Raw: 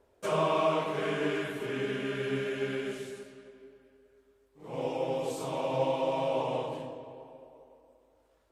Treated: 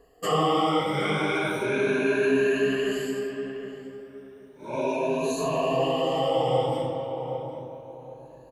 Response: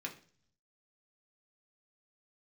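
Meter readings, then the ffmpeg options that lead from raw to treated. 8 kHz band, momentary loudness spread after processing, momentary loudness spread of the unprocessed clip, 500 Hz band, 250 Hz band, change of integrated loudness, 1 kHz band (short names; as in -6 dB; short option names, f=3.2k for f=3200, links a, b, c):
+8.5 dB, 19 LU, 17 LU, +6.5 dB, +8.0 dB, +6.0 dB, +6.5 dB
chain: -filter_complex "[0:a]afftfilt=real='re*pow(10,21/40*sin(2*PI*(1.5*log(max(b,1)*sr/1024/100)/log(2)-(0.34)*(pts-256)/sr)))':imag='im*pow(10,21/40*sin(2*PI*(1.5*log(max(b,1)*sr/1024/100)/log(2)-(0.34)*(pts-256)/sr)))':win_size=1024:overlap=0.75,asplit=2[a][b];[b]alimiter=limit=-24dB:level=0:latency=1,volume=-3dB[c];[a][c]amix=inputs=2:normalize=0,asplit=2[d][e];[e]adelay=767,lowpass=f=1.2k:p=1,volume=-8dB,asplit=2[f][g];[g]adelay=767,lowpass=f=1.2k:p=1,volume=0.29,asplit=2[h][i];[i]adelay=767,lowpass=f=1.2k:p=1,volume=0.29[j];[d][f][h][j]amix=inputs=4:normalize=0"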